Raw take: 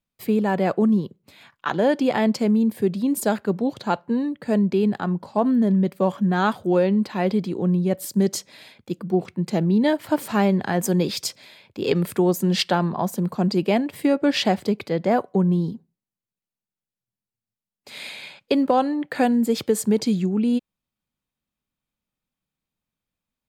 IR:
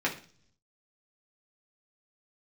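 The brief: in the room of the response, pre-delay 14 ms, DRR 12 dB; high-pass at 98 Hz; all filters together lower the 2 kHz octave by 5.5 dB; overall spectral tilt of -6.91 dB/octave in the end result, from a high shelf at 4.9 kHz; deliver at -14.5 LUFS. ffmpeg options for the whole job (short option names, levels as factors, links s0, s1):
-filter_complex "[0:a]highpass=98,equalizer=f=2000:t=o:g=-6,highshelf=f=4900:g=-8.5,asplit=2[s0][s1];[1:a]atrim=start_sample=2205,adelay=14[s2];[s1][s2]afir=irnorm=-1:irlink=0,volume=0.0841[s3];[s0][s3]amix=inputs=2:normalize=0,volume=2.37"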